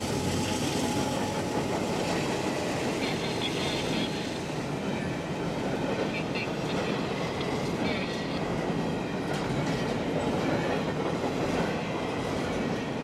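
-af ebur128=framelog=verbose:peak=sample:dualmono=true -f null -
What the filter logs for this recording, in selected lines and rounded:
Integrated loudness:
  I:         -26.8 LUFS
  Threshold: -36.8 LUFS
Loudness range:
  LRA:         1.5 LU
  Threshold: -46.9 LUFS
  LRA low:   -27.6 LUFS
  LRA high:  -26.2 LUFS
Sample peak:
  Peak:      -16.1 dBFS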